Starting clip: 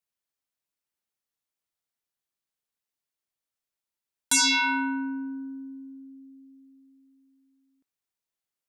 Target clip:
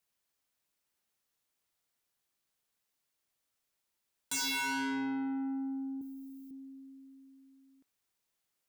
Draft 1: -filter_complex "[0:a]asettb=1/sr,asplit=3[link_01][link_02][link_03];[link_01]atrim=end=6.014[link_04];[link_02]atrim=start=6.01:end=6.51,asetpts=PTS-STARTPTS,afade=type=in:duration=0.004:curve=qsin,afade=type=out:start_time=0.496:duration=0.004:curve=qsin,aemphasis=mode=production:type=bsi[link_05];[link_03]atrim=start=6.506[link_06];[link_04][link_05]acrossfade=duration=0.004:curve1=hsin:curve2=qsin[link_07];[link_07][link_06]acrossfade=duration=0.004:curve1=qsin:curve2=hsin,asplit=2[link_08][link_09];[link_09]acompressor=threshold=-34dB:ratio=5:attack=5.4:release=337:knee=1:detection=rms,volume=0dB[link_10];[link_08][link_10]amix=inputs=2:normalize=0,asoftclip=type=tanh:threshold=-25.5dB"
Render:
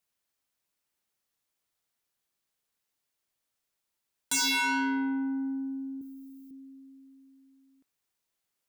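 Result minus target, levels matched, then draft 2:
soft clipping: distortion −5 dB
-filter_complex "[0:a]asettb=1/sr,asplit=3[link_01][link_02][link_03];[link_01]atrim=end=6.014[link_04];[link_02]atrim=start=6.01:end=6.51,asetpts=PTS-STARTPTS,afade=type=in:duration=0.004:curve=qsin,afade=type=out:start_time=0.496:duration=0.004:curve=qsin,aemphasis=mode=production:type=bsi[link_05];[link_03]atrim=start=6.506[link_06];[link_04][link_05]acrossfade=duration=0.004:curve1=hsin:curve2=qsin[link_07];[link_07][link_06]acrossfade=duration=0.004:curve1=qsin:curve2=hsin,asplit=2[link_08][link_09];[link_09]acompressor=threshold=-34dB:ratio=5:attack=5.4:release=337:knee=1:detection=rms,volume=0dB[link_10];[link_08][link_10]amix=inputs=2:normalize=0,asoftclip=type=tanh:threshold=-33dB"

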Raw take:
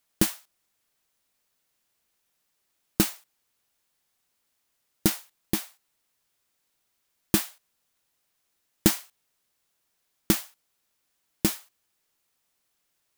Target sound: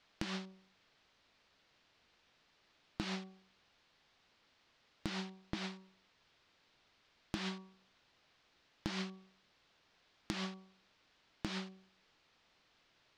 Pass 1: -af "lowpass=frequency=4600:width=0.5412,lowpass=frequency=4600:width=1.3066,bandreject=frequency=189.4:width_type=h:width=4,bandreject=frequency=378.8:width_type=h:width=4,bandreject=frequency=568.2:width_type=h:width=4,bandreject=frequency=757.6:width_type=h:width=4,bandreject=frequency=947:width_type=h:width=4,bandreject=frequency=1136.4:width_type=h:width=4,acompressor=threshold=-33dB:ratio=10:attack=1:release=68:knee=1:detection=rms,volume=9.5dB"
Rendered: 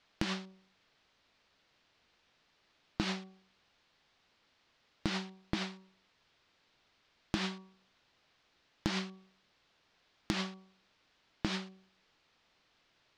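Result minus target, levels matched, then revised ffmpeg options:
downward compressor: peak gain reduction −6.5 dB
-af "lowpass=frequency=4600:width=0.5412,lowpass=frequency=4600:width=1.3066,bandreject=frequency=189.4:width_type=h:width=4,bandreject=frequency=378.8:width_type=h:width=4,bandreject=frequency=568.2:width_type=h:width=4,bandreject=frequency=757.6:width_type=h:width=4,bandreject=frequency=947:width_type=h:width=4,bandreject=frequency=1136.4:width_type=h:width=4,acompressor=threshold=-40dB:ratio=10:attack=1:release=68:knee=1:detection=rms,volume=9.5dB"

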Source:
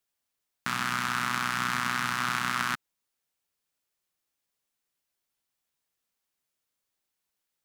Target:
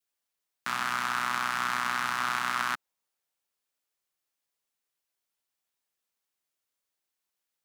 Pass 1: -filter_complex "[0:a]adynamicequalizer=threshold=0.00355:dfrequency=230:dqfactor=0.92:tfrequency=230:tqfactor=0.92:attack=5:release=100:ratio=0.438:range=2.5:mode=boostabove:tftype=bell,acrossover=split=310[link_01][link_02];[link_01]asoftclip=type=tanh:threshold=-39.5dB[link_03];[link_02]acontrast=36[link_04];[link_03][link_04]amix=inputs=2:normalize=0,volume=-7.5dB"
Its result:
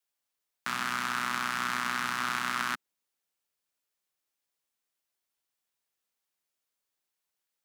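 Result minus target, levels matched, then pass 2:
250 Hz band +5.0 dB
-filter_complex "[0:a]adynamicequalizer=threshold=0.00355:dfrequency=770:dqfactor=0.92:tfrequency=770:tqfactor=0.92:attack=5:release=100:ratio=0.438:range=2.5:mode=boostabove:tftype=bell,acrossover=split=310[link_01][link_02];[link_01]asoftclip=type=tanh:threshold=-39.5dB[link_03];[link_02]acontrast=36[link_04];[link_03][link_04]amix=inputs=2:normalize=0,volume=-7.5dB"

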